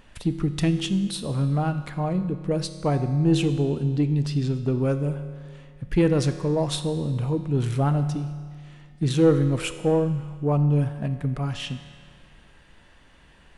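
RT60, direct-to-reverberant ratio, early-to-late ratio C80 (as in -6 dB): 1.9 s, 9.0 dB, 11.5 dB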